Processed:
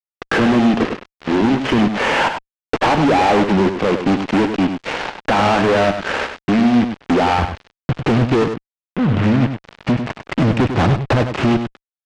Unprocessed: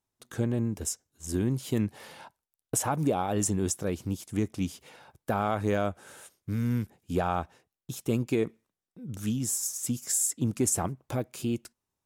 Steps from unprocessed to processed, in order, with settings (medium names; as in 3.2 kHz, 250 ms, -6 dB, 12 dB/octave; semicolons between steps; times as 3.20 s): CVSD coder 16 kbps; high-pass 200 Hz 24 dB/octave, from 7.38 s 57 Hz; compression 3:1, threshold -41 dBFS, peak gain reduction 14.5 dB; random-step tremolo; fuzz box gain 52 dB, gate -58 dBFS; distance through air 96 m; delay 99 ms -8 dB; trim +1.5 dB